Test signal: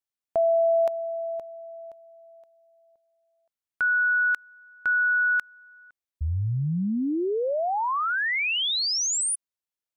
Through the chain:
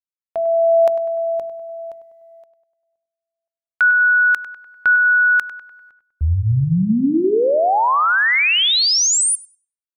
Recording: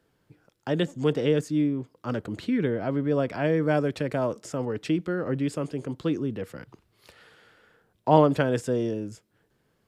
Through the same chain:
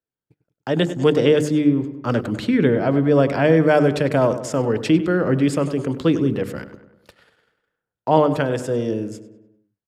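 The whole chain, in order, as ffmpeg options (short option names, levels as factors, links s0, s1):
-filter_complex "[0:a]bandreject=f=50:t=h:w=6,bandreject=f=100:t=h:w=6,bandreject=f=150:t=h:w=6,bandreject=f=200:t=h:w=6,bandreject=f=250:t=h:w=6,bandreject=f=300:t=h:w=6,bandreject=f=350:t=h:w=6,bandreject=f=400:t=h:w=6,agate=range=0.0631:threshold=0.00316:ratio=3:release=22:detection=peak,dynaudnorm=f=150:g=9:m=3.55,asplit=2[s0][s1];[s1]adelay=99,lowpass=f=2700:p=1,volume=0.251,asplit=2[s2][s3];[s3]adelay=99,lowpass=f=2700:p=1,volume=0.55,asplit=2[s4][s5];[s5]adelay=99,lowpass=f=2700:p=1,volume=0.55,asplit=2[s6][s7];[s7]adelay=99,lowpass=f=2700:p=1,volume=0.55,asplit=2[s8][s9];[s9]adelay=99,lowpass=f=2700:p=1,volume=0.55,asplit=2[s10][s11];[s11]adelay=99,lowpass=f=2700:p=1,volume=0.55[s12];[s0][s2][s4][s6][s8][s10][s12]amix=inputs=7:normalize=0,volume=0.891"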